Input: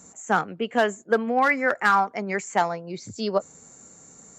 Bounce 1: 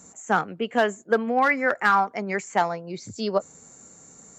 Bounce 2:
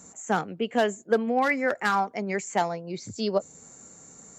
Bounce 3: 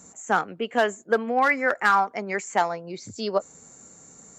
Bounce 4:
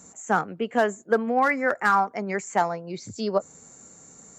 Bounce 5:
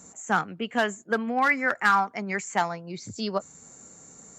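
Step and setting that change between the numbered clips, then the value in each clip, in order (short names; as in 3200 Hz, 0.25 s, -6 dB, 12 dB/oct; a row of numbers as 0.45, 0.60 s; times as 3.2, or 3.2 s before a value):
dynamic EQ, frequency: 8600, 1300, 140, 3200, 500 Hz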